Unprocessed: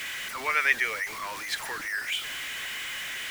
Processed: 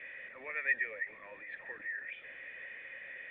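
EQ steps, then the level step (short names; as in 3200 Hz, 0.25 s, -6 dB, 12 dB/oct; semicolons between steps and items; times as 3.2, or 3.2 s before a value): dynamic EQ 490 Hz, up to -6 dB, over -53 dBFS, Q 2.3; dynamic EQ 210 Hz, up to +5 dB, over -54 dBFS, Q 1.1; vocal tract filter e; +2.0 dB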